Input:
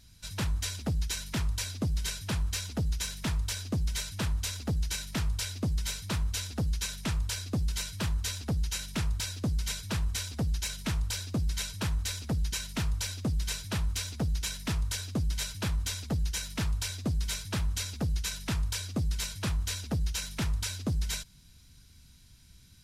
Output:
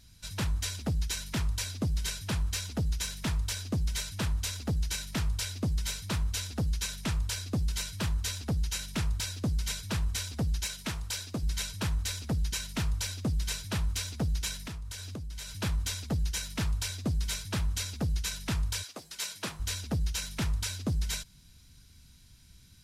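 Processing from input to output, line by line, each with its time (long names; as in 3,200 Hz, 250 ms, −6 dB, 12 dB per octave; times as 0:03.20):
0:10.66–0:11.43: low-shelf EQ 190 Hz −8 dB
0:14.63–0:15.53: downward compressor 5 to 1, threshold −37 dBFS
0:18.82–0:19.59: high-pass filter 780 Hz → 210 Hz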